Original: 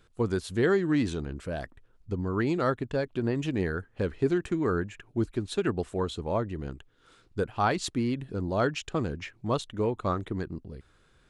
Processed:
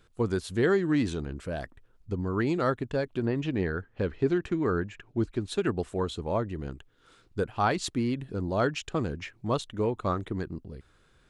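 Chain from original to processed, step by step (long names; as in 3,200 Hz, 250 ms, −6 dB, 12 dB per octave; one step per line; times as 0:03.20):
0:03.25–0:05.40: low-pass filter 4,200 Hz → 7,000 Hz 12 dB per octave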